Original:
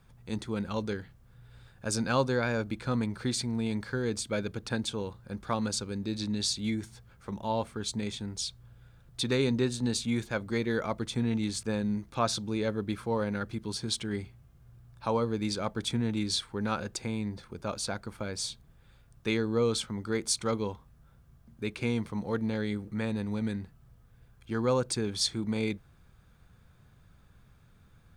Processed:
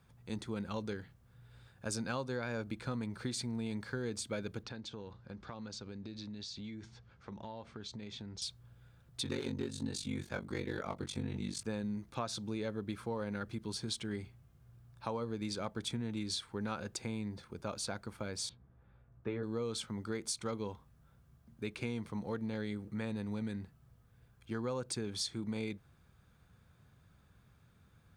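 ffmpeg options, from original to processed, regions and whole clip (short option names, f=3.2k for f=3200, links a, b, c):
-filter_complex "[0:a]asettb=1/sr,asplit=3[a][b][c];[a]atrim=end=4.634[d];[b]atrim=start=4.63:end=8.42,asetpts=PTS-STARTPTS,afade=t=in:d=0.004:c=qsin,afade=t=out:st=3.786:d=0.004:c=qsin,lowpass=f=5.9k:w=0.5412,lowpass=f=5.9k:w=1.3066,acompressor=threshold=-37dB:ratio=10:attack=3.2:release=140:knee=1:detection=peak[e];[c]atrim=start=8.416[f];[d][e]acrossfade=d=0.004:c1=hsin:c2=qsin[g];[g][f]acrossfade=d=0.004:c1=qsin:c2=hsin,asettb=1/sr,asplit=3[h][i][j];[h]atrim=end=9.234[k];[i]atrim=start=9.23:end=11.61,asetpts=PTS-STARTPTS,afade=t=in:d=0.004:c=qsin,afade=t=out:st=2.376:d=0.004:c=qsin,volume=20dB,asoftclip=hard,volume=-20dB,aeval=exprs='val(0)*sin(2*PI*24*n/s)':c=same,asplit=2[l][m];[m]adelay=22,volume=-4dB[n];[l][n]amix=inputs=2:normalize=0,atrim=end_sample=104958[o];[j]atrim=start=11.606[p];[k][o]acrossfade=d=0.004:c1=hsin:c2=qsin[q];[q][p]acrossfade=d=0.004:c1=qsin:c2=hsin,asettb=1/sr,asplit=3[r][s][t];[r]atrim=end=18.494[u];[s]atrim=start=18.49:end=19.43,asetpts=PTS-STARTPTS,afade=t=in:d=0.004:c=qsin,afade=t=out:st=0.936:d=0.004:c=qsin,lowpass=1.4k,asplit=2[v][w];[w]adelay=16,volume=-5.5dB[x];[v][x]amix=inputs=2:normalize=0,atrim=end_sample=41454[y];[t]atrim=start=19.426[z];[u][y]acrossfade=d=0.004:c1=hsin:c2=qsin[aa];[aa][z]acrossfade=d=0.004:c1=qsin:c2=hsin,acompressor=threshold=-30dB:ratio=6,highpass=56,volume=-4dB"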